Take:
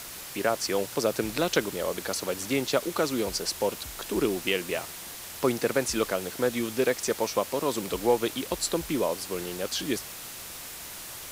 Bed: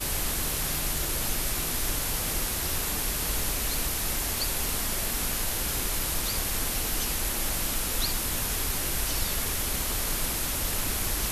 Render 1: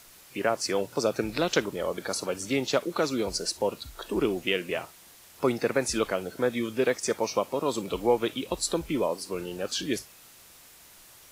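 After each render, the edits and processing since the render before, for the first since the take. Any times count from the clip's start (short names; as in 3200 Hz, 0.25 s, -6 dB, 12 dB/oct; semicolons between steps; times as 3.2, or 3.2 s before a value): noise print and reduce 12 dB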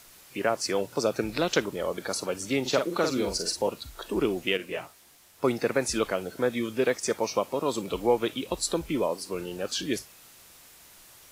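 2.61–3.69 doubler 46 ms -5.5 dB; 4.57–5.44 detuned doubles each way 21 cents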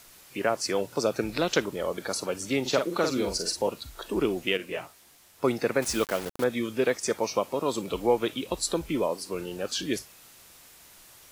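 5.82–6.44 requantised 6-bit, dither none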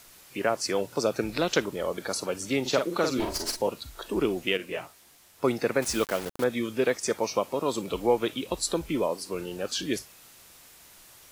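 3.19–3.6 minimum comb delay 3.1 ms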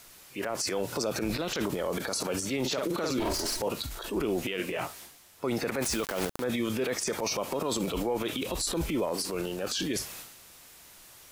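transient shaper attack -4 dB, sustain +10 dB; limiter -20.5 dBFS, peak gain reduction 11 dB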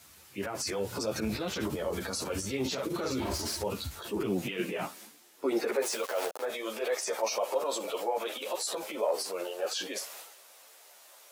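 high-pass sweep 80 Hz -> 580 Hz, 3.8–6.11; ensemble effect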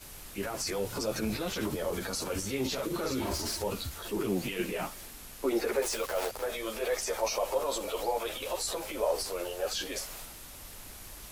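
add bed -18.5 dB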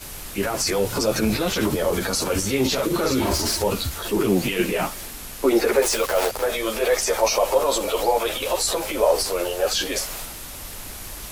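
gain +11 dB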